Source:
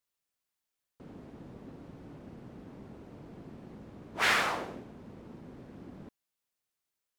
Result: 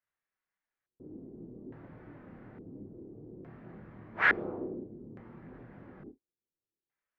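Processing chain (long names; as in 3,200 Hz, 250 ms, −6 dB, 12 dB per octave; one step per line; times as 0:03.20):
reverb whose tail is shaped and stops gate 80 ms falling, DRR 9 dB
multi-voice chorus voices 2, 0.54 Hz, delay 27 ms, depth 2.8 ms
auto-filter low-pass square 0.58 Hz 360–1,800 Hz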